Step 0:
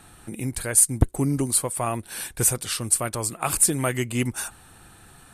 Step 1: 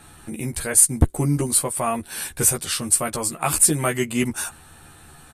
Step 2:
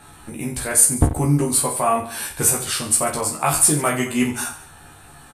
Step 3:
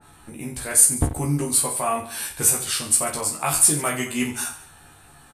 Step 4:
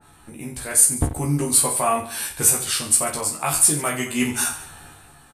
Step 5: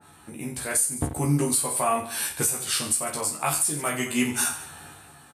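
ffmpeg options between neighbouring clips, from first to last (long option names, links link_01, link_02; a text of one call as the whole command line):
ffmpeg -i in.wav -filter_complex "[0:a]asplit=2[link_01][link_02];[link_02]adelay=13,volume=-2.5dB[link_03];[link_01][link_03]amix=inputs=2:normalize=0,volume=1dB" out.wav
ffmpeg -i in.wav -filter_complex "[0:a]equalizer=frequency=870:width_type=o:width=1.4:gain=4.5,asplit=2[link_01][link_02];[link_02]aecho=0:1:20|48|87.2|142.1|218.9:0.631|0.398|0.251|0.158|0.1[link_03];[link_01][link_03]amix=inputs=2:normalize=0,volume=-1dB" out.wav
ffmpeg -i in.wav -af "adynamicequalizer=threshold=0.02:dfrequency=1800:dqfactor=0.7:tfrequency=1800:tqfactor=0.7:attack=5:release=100:ratio=0.375:range=2.5:mode=boostabove:tftype=highshelf,volume=-5.5dB" out.wav
ffmpeg -i in.wav -af "dynaudnorm=framelen=110:gausssize=11:maxgain=12dB,volume=-1dB" out.wav
ffmpeg -i in.wav -af "alimiter=limit=-12.5dB:level=0:latency=1:release=401,highpass=94" out.wav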